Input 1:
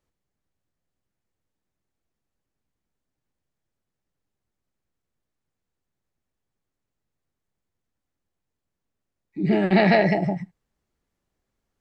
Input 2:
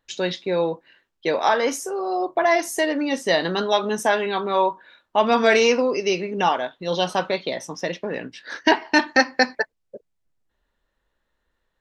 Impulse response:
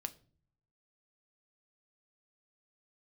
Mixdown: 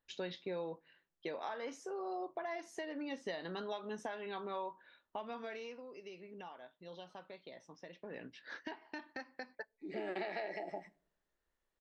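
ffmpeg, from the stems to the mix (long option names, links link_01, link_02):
-filter_complex "[0:a]highpass=frequency=330:width=0.5412,highpass=frequency=330:width=1.3066,acompressor=threshold=-24dB:ratio=6,adelay=450,volume=-12.5dB,asplit=2[link_01][link_02];[link_02]volume=-4dB[link_03];[1:a]lowpass=4300,acompressor=threshold=-25dB:ratio=6,volume=-5dB,afade=type=out:start_time=5.14:duration=0.65:silence=0.334965,afade=type=in:start_time=7.91:duration=0.43:silence=0.375837,asplit=3[link_04][link_05][link_06];[link_05]volume=-17dB[link_07];[link_06]apad=whole_len=540438[link_08];[link_01][link_08]sidechaincompress=threshold=-55dB:ratio=8:attack=46:release=469[link_09];[2:a]atrim=start_sample=2205[link_10];[link_03][link_07]amix=inputs=2:normalize=0[link_11];[link_11][link_10]afir=irnorm=-1:irlink=0[link_12];[link_09][link_04][link_12]amix=inputs=3:normalize=0,alimiter=level_in=6dB:limit=-24dB:level=0:latency=1:release=488,volume=-6dB"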